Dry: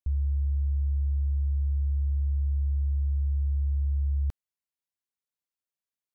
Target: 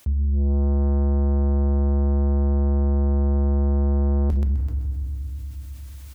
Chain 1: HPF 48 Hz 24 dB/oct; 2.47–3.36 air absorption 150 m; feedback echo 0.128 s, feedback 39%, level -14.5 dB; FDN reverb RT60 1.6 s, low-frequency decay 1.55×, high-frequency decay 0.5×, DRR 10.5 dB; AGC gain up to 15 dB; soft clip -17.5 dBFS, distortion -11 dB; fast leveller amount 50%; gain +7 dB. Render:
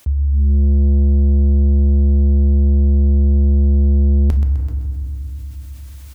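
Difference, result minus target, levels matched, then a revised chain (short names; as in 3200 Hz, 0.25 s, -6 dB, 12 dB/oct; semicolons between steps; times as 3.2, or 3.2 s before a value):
soft clip: distortion -4 dB
HPF 48 Hz 24 dB/oct; 2.47–3.36 air absorption 150 m; feedback echo 0.128 s, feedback 39%, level -14.5 dB; FDN reverb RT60 1.6 s, low-frequency decay 1.55×, high-frequency decay 0.5×, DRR 10.5 dB; AGC gain up to 15 dB; soft clip -25.5 dBFS, distortion -7 dB; fast leveller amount 50%; gain +7 dB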